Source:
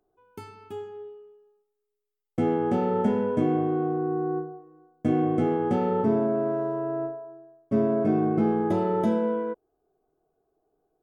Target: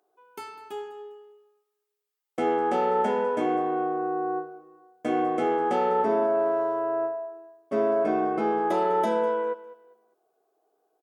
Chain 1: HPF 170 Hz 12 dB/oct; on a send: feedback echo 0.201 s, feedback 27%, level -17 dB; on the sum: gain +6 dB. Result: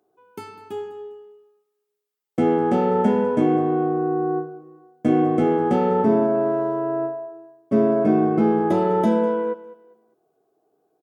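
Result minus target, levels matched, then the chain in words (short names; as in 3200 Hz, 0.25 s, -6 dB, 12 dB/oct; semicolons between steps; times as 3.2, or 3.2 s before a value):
125 Hz band +11.5 dB
HPF 540 Hz 12 dB/oct; on a send: feedback echo 0.201 s, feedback 27%, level -17 dB; on the sum: gain +6 dB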